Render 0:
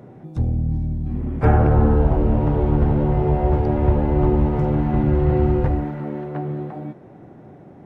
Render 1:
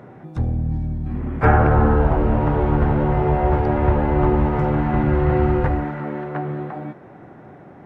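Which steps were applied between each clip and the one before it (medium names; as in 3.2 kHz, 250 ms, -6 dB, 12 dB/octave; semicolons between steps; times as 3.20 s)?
peaking EQ 1.5 kHz +10 dB 2 oct; trim -1 dB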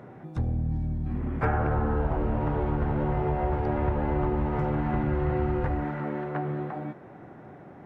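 compression 3:1, threshold -20 dBFS, peak gain reduction 8.5 dB; trim -4 dB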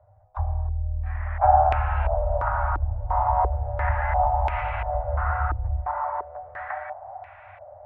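Chebyshev band-stop 100–600 Hz, order 5; step-sequenced low-pass 2.9 Hz 310–2500 Hz; trim +4.5 dB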